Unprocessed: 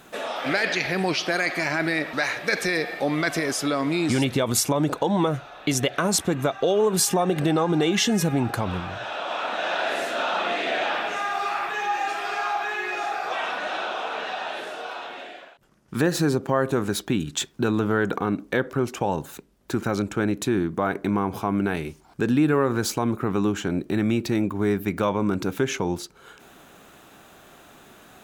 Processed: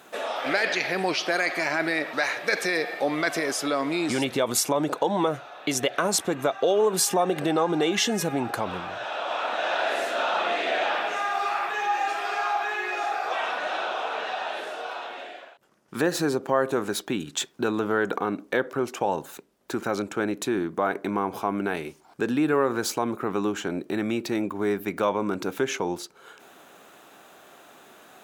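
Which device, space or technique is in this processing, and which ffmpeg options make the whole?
filter by subtraction: -filter_complex "[0:a]asplit=2[link_01][link_02];[link_02]lowpass=540,volume=-1[link_03];[link_01][link_03]amix=inputs=2:normalize=0,volume=-1.5dB"

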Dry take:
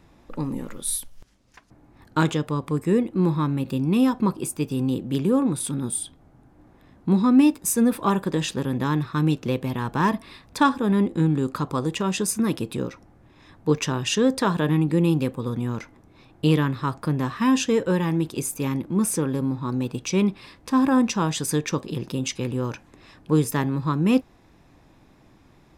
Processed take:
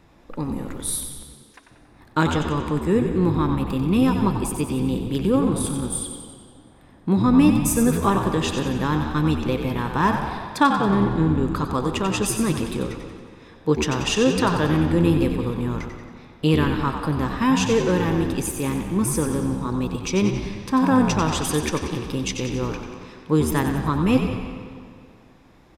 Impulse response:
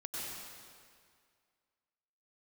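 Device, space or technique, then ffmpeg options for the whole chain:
filtered reverb send: -filter_complex "[0:a]asettb=1/sr,asplit=3[link_01][link_02][link_03];[link_01]atrim=end=10.704[link_04];[link_02]atrim=start=10.7:end=11.48,asetpts=PTS-STARTPTS,afade=type=in:duration=0.004:curve=qsin,afade=type=out:start_time=0.776:duration=0.004:curve=qsin,highshelf=frequency=3800:gain=-8.5[link_05];[link_03]atrim=start=11.476[link_06];[link_04][link_05]acrossfade=duration=0.004:curve1=hsin:curve2=qsin[link_07];[link_07][link_06]acrossfade=duration=0.004:curve1=qsin:curve2=hsin,asplit=2[link_08][link_09];[link_09]highpass=280,lowpass=5100[link_10];[1:a]atrim=start_sample=2205[link_11];[link_10][link_11]afir=irnorm=-1:irlink=0,volume=-6.5dB[link_12];[link_08][link_12]amix=inputs=2:normalize=0,asplit=7[link_13][link_14][link_15][link_16][link_17][link_18][link_19];[link_14]adelay=92,afreqshift=-75,volume=-7.5dB[link_20];[link_15]adelay=184,afreqshift=-150,volume=-13dB[link_21];[link_16]adelay=276,afreqshift=-225,volume=-18.5dB[link_22];[link_17]adelay=368,afreqshift=-300,volume=-24dB[link_23];[link_18]adelay=460,afreqshift=-375,volume=-29.6dB[link_24];[link_19]adelay=552,afreqshift=-450,volume=-35.1dB[link_25];[link_13][link_20][link_21][link_22][link_23][link_24][link_25]amix=inputs=7:normalize=0"

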